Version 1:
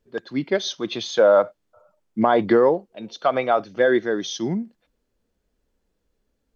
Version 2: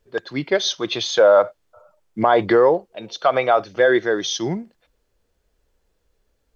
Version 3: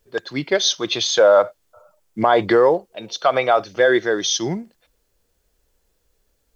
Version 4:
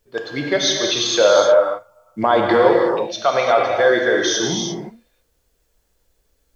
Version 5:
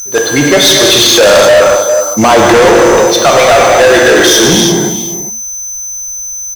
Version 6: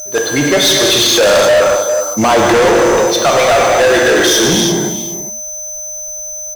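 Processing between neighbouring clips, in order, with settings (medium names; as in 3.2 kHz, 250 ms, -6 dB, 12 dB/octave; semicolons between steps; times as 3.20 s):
peaking EQ 230 Hz -10.5 dB 0.9 oct; in parallel at 0 dB: peak limiter -15 dBFS, peak gain reduction 8.5 dB
treble shelf 5.5 kHz +11 dB
gated-style reverb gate 380 ms flat, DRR -0.5 dB; trim -1.5 dB
whistle 6.1 kHz -34 dBFS; echo from a far wall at 69 m, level -14 dB; waveshaping leveller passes 5
whistle 610 Hz -30 dBFS; trim -4.5 dB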